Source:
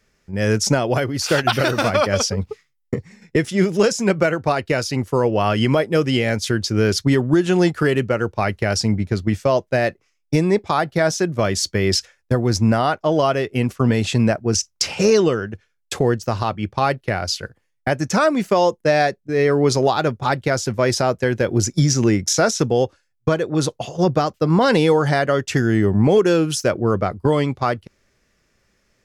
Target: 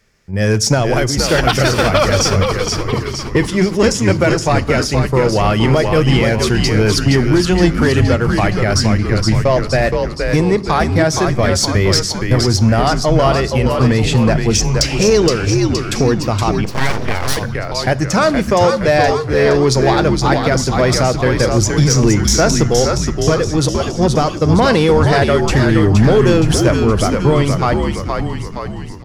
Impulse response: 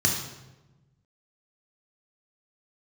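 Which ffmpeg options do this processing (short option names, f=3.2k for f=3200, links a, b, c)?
-filter_complex "[0:a]asplit=8[a][b][c][d][e][f][g][h];[b]adelay=469,afreqshift=-85,volume=-5dB[i];[c]adelay=938,afreqshift=-170,volume=-10dB[j];[d]adelay=1407,afreqshift=-255,volume=-15.1dB[k];[e]adelay=1876,afreqshift=-340,volume=-20.1dB[l];[f]adelay=2345,afreqshift=-425,volume=-25.1dB[m];[g]adelay=2814,afreqshift=-510,volume=-30.2dB[n];[h]adelay=3283,afreqshift=-595,volume=-35.2dB[o];[a][i][j][k][l][m][n][o]amix=inputs=8:normalize=0,asettb=1/sr,asplit=3[p][q][r];[p]atrim=end=16.644[s];[q]atrim=start=16.64:end=17.37,asetpts=PTS-STARTPTS,afade=t=in:d=0.004:c=qsin,afade=t=out:st=0.726:d=0.004:c=qsin,aeval=exprs='abs(val(0))':c=same[t];[r]atrim=start=17.366[u];[s][t]acrossfade=d=0.004:c1=hsin:c2=qsin[v];[v][u]acrossfade=d=0.004:c1=qsin:c2=hsin,acontrast=56,asplit=2[w][x];[1:a]atrim=start_sample=2205[y];[x][y]afir=irnorm=-1:irlink=0,volume=-27.5dB[z];[w][z]amix=inputs=2:normalize=0,volume=-1dB"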